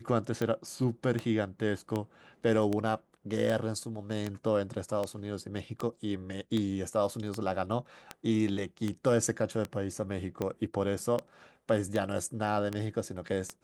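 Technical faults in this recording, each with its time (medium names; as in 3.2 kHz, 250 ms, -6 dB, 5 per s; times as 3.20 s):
tick 78 rpm -19 dBFS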